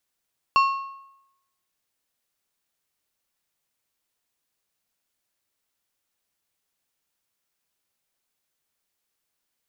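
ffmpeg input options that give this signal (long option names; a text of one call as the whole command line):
ffmpeg -f lavfi -i "aevalsrc='0.224*pow(10,-3*t/0.85)*sin(2*PI*1090*t)+0.0841*pow(10,-3*t/0.646)*sin(2*PI*2725*t)+0.0316*pow(10,-3*t/0.561)*sin(2*PI*4360*t)+0.0119*pow(10,-3*t/0.524)*sin(2*PI*5450*t)+0.00447*pow(10,-3*t/0.485)*sin(2*PI*7085*t)':duration=1.55:sample_rate=44100" out.wav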